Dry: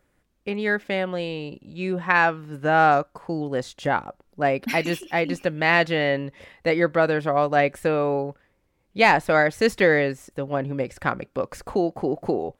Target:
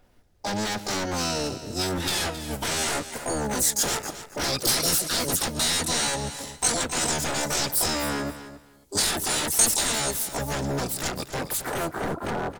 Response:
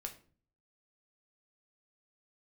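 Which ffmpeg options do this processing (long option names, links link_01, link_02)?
-filter_complex "[0:a]afftfilt=real='re*pow(10,8/40*sin(2*PI*(0.62*log(max(b,1)*sr/1024/100)/log(2)-(-0.29)*(pts-256)/sr)))':imag='im*pow(10,8/40*sin(2*PI*(0.62*log(max(b,1)*sr/1024/100)/log(2)-(-0.29)*(pts-256)/sr)))':win_size=1024:overlap=0.75,acrossover=split=110|1900[link_01][link_02][link_03];[link_01]acompressor=threshold=-55dB:ratio=4[link_04];[link_02]acompressor=threshold=-26dB:ratio=4[link_05];[link_03]acompressor=threshold=-32dB:ratio=4[link_06];[link_04][link_05][link_06]amix=inputs=3:normalize=0,asplit=4[link_07][link_08][link_09][link_10];[link_08]asetrate=22050,aresample=44100,atempo=2,volume=0dB[link_11];[link_09]asetrate=66075,aresample=44100,atempo=0.66742,volume=-1dB[link_12];[link_10]asetrate=88200,aresample=44100,atempo=0.5,volume=-1dB[link_13];[link_07][link_11][link_12][link_13]amix=inputs=4:normalize=0,adynamicequalizer=threshold=0.00501:dfrequency=9900:dqfactor=0.82:tfrequency=9900:tqfactor=0.82:attack=5:release=100:ratio=0.375:range=2.5:mode=boostabove:tftype=bell,acrossover=split=5900[link_14][link_15];[link_14]aeval=exprs='0.075*(abs(mod(val(0)/0.075+3,4)-2)-1)':channel_layout=same[link_16];[link_15]dynaudnorm=framelen=270:gausssize=11:maxgain=15dB[link_17];[link_16][link_17]amix=inputs=2:normalize=0,equalizer=frequency=2600:width_type=o:width=0.77:gain=-3.5,bandreject=frequency=1100:width=9.9,asplit=2[link_18][link_19];[link_19]aecho=0:1:268|536:0.224|0.0425[link_20];[link_18][link_20]amix=inputs=2:normalize=0"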